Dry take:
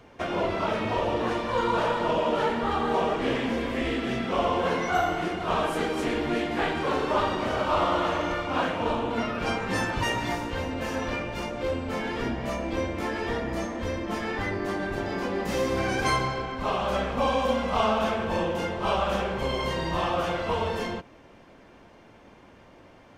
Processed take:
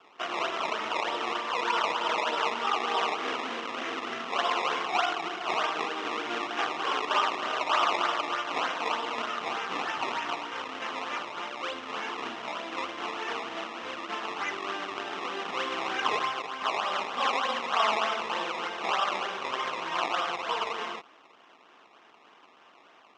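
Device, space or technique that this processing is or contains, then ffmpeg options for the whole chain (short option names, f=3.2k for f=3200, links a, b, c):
circuit-bent sampling toy: -af "acrusher=samples=20:mix=1:aa=0.000001:lfo=1:lforange=20:lforate=3.3,highpass=530,equalizer=f=550:t=q:w=4:g=-8,equalizer=f=1.2k:t=q:w=4:g=6,equalizer=f=2.9k:t=q:w=4:g=6,equalizer=f=4.5k:t=q:w=4:g=-7,lowpass=f=5.3k:w=0.5412,lowpass=f=5.3k:w=1.3066,volume=-1dB"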